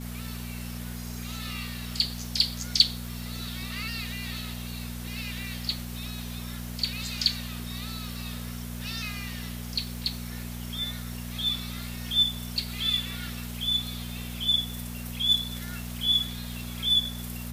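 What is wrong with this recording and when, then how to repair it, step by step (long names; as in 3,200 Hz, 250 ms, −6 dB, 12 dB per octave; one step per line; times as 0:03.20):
surface crackle 34 per second −38 dBFS
mains hum 60 Hz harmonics 4 −37 dBFS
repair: click removal
hum removal 60 Hz, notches 4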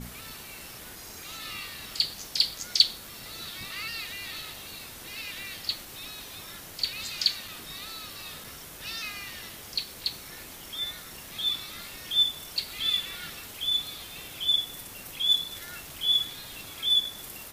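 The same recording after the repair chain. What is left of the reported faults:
none of them is left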